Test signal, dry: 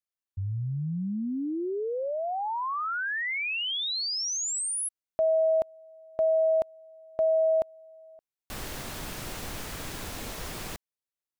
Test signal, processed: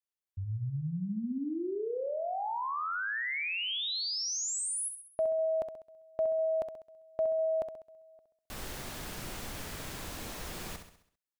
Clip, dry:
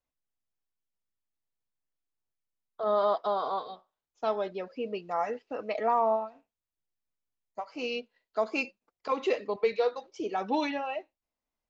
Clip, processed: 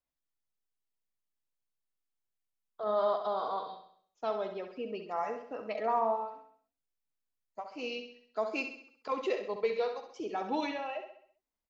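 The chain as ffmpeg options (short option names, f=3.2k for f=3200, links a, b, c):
-af "aecho=1:1:66|132|198|264|330|396:0.398|0.191|0.0917|0.044|0.0211|0.0101,volume=-4.5dB"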